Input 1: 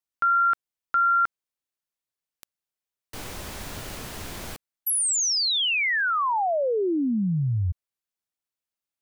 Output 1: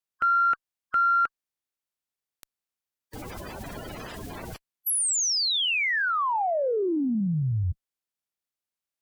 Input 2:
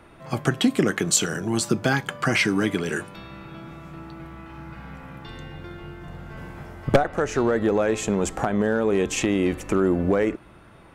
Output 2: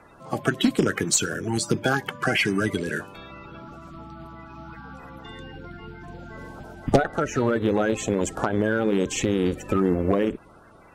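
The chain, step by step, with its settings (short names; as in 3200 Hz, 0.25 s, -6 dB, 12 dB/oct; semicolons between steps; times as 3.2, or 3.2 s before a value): bin magnitudes rounded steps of 30 dB; added harmonics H 4 -39 dB, 6 -24 dB, 7 -36 dB, 8 -29 dB, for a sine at -5.5 dBFS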